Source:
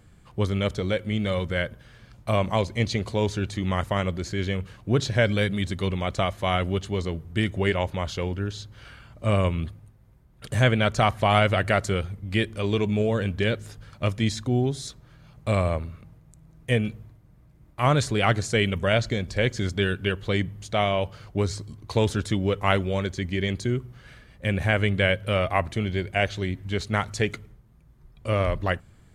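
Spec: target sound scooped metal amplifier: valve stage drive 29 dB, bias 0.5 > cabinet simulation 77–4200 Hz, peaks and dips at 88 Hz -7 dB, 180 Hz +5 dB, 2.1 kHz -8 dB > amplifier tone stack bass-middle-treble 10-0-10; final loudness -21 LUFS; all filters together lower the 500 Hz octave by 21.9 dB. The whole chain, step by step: peaking EQ 500 Hz -6.5 dB; valve stage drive 29 dB, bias 0.5; cabinet simulation 77–4200 Hz, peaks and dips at 88 Hz -7 dB, 180 Hz +5 dB, 2.1 kHz -8 dB; amplifier tone stack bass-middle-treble 10-0-10; trim +25 dB

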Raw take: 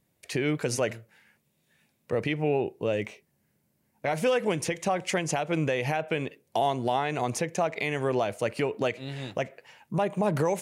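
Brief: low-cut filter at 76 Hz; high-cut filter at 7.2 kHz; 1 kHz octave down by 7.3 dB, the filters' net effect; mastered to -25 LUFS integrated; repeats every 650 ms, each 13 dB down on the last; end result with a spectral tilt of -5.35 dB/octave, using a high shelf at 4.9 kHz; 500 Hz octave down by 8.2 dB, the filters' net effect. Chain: high-pass 76 Hz; low-pass 7.2 kHz; peaking EQ 500 Hz -8.5 dB; peaking EQ 1 kHz -6 dB; treble shelf 4.9 kHz -4.5 dB; feedback delay 650 ms, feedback 22%, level -13 dB; trim +8.5 dB

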